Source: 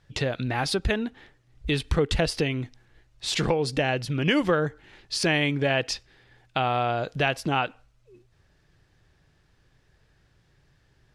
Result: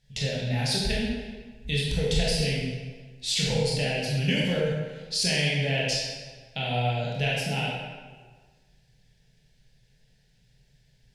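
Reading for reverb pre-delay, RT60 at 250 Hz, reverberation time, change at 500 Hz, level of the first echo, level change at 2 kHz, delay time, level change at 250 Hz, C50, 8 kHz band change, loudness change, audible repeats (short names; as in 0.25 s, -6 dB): 20 ms, 1.5 s, 1.5 s, -3.0 dB, none, -2.0 dB, none, -2.5 dB, -1.0 dB, +3.5 dB, -1.0 dB, none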